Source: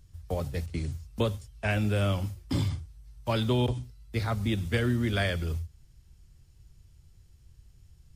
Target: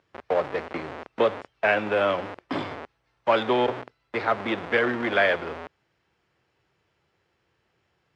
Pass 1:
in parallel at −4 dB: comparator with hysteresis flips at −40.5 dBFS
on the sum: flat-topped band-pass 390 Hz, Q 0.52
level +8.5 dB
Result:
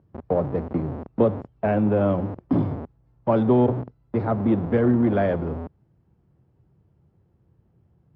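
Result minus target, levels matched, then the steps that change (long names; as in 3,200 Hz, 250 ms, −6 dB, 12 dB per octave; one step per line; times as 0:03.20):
1,000 Hz band −5.5 dB
change: flat-topped band-pass 1,000 Hz, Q 0.52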